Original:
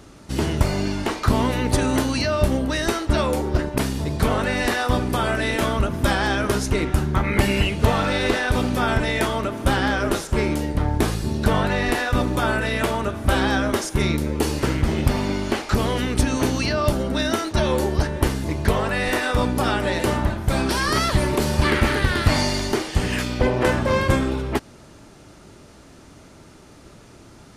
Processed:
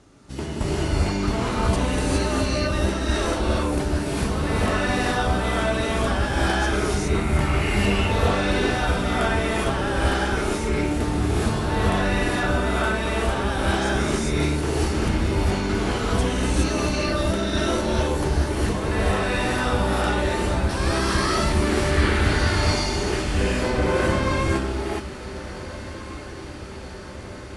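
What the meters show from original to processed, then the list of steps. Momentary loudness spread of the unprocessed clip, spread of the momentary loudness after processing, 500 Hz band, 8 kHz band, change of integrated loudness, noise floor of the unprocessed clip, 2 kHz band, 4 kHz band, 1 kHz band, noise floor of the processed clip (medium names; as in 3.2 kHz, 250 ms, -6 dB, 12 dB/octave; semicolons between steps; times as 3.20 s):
4 LU, 8 LU, -1.0 dB, -0.5 dB, -1.0 dB, -46 dBFS, -1.0 dB, -1.0 dB, -0.5 dB, -36 dBFS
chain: Chebyshev low-pass 11 kHz, order 5; echo that smears into a reverb 1635 ms, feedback 69%, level -15.5 dB; gated-style reverb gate 440 ms rising, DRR -7 dB; trim -8.5 dB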